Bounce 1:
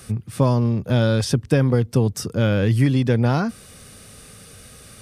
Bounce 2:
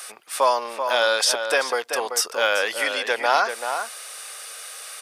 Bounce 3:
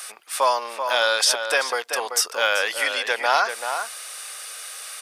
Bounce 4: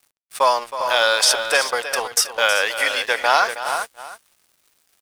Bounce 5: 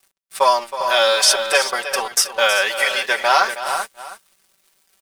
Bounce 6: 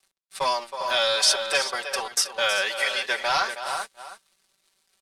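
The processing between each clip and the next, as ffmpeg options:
-filter_complex "[0:a]highpass=f=670:w=0.5412,highpass=f=670:w=1.3066,asplit=2[s0][s1];[s1]adelay=384.8,volume=0.447,highshelf=f=4000:g=-8.66[s2];[s0][s2]amix=inputs=2:normalize=0,volume=2.66"
-af "lowshelf=f=430:g=-10,volume=1.19"
-af "agate=range=0.282:threshold=0.0447:ratio=16:detection=peak,aeval=exprs='sgn(val(0))*max(abs(val(0))-0.00841,0)':c=same,aecho=1:1:319:0.251,volume=1.5"
-af "aecho=1:1:5.2:0.92,volume=0.891"
-filter_complex "[0:a]lowpass=11000,equalizer=f=4100:t=o:w=0.46:g=4.5,acrossover=split=130|1400|5800[s0][s1][s2][s3];[s1]asoftclip=type=tanh:threshold=0.178[s4];[s0][s4][s2][s3]amix=inputs=4:normalize=0,volume=0.473"

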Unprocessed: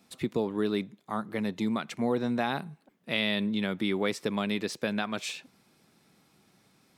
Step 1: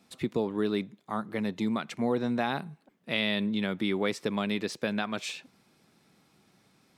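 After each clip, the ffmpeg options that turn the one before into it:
-af "highshelf=f=10000:g=-5.5"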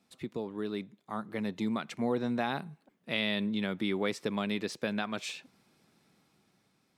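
-af "dynaudnorm=f=240:g=9:m=1.88,volume=0.398"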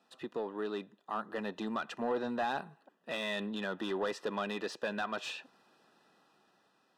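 -filter_complex "[0:a]asplit=2[s0][s1];[s1]highpass=f=720:p=1,volume=11.2,asoftclip=type=tanh:threshold=0.178[s2];[s0][s2]amix=inputs=2:normalize=0,lowpass=f=1200:p=1,volume=0.501,asuperstop=centerf=2200:order=12:qfactor=5.7,lowshelf=f=220:g=-11,volume=0.562"

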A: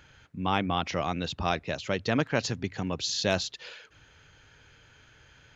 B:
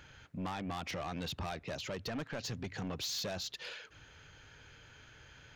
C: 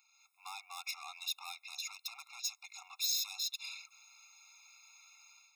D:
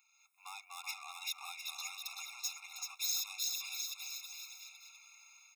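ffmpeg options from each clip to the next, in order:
-af "acompressor=threshold=0.0355:ratio=6,asoftclip=type=tanh:threshold=0.02"
-af "aderivative,dynaudnorm=f=100:g=5:m=3.55,afftfilt=real='re*eq(mod(floor(b*sr/1024/700),2),1)':imag='im*eq(mod(floor(b*sr/1024/700),2),1)':win_size=1024:overlap=0.75"
-filter_complex "[0:a]highpass=f=840:p=1,equalizer=f=4500:w=5.7:g=-12.5,asplit=2[s0][s1];[s1]aecho=0:1:380|703|977.6|1211|1409:0.631|0.398|0.251|0.158|0.1[s2];[s0][s2]amix=inputs=2:normalize=0"

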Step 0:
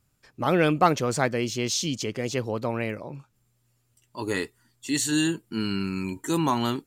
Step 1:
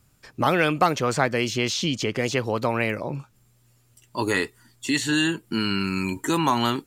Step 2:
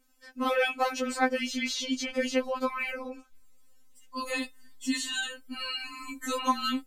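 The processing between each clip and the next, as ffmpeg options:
-filter_complex "[0:a]acrossover=split=770|3500[s0][s1][s2];[s0]acompressor=threshold=0.0251:ratio=4[s3];[s1]acompressor=threshold=0.0355:ratio=4[s4];[s2]acompressor=threshold=0.00631:ratio=4[s5];[s3][s4][s5]amix=inputs=3:normalize=0,volume=2.66"
-af "asubboost=boost=4.5:cutoff=77,afftfilt=real='re*3.46*eq(mod(b,12),0)':imag='im*3.46*eq(mod(b,12),0)':win_size=2048:overlap=0.75,volume=0.708"

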